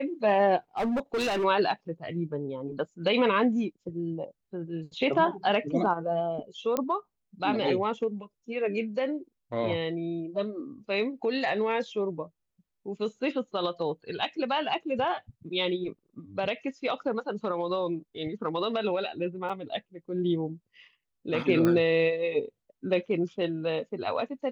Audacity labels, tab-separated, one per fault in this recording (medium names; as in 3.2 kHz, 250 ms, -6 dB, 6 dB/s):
0.770000	1.450000	clipped -25 dBFS
6.770000	6.770000	pop -13 dBFS
19.490000	19.500000	dropout 6.2 ms
21.650000	21.650000	pop -14 dBFS